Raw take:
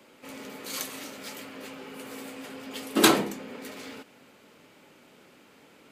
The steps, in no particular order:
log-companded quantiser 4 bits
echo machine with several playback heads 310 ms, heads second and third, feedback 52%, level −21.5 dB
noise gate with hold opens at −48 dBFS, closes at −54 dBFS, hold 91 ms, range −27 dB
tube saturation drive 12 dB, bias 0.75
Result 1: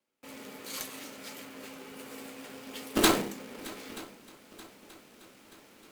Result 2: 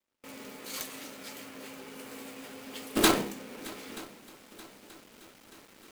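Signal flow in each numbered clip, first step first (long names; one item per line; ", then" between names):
log-companded quantiser, then noise gate with hold, then tube saturation, then echo machine with several playback heads
tube saturation, then echo machine with several playback heads, then log-companded quantiser, then noise gate with hold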